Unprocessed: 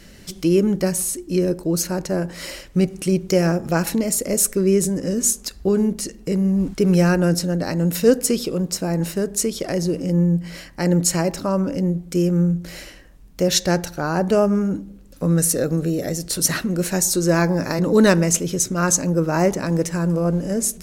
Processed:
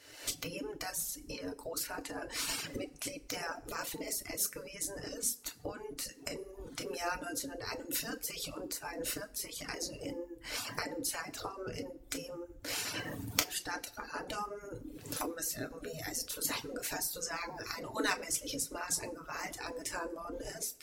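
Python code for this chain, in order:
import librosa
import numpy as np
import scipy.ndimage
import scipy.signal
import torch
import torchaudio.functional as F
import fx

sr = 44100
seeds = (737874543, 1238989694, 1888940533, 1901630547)

y = fx.recorder_agc(x, sr, target_db=-11.5, rise_db_per_s=57.0, max_gain_db=30)
y = fx.low_shelf(y, sr, hz=230.0, db=-4.0)
y = fx.spec_gate(y, sr, threshold_db=-10, keep='weak')
y = fx.rev_fdn(y, sr, rt60_s=0.54, lf_ratio=1.0, hf_ratio=0.85, size_ms=20.0, drr_db=2.5)
y = fx.dereverb_blind(y, sr, rt60_s=1.2)
y = y * 10.0 ** (-11.0 / 20.0)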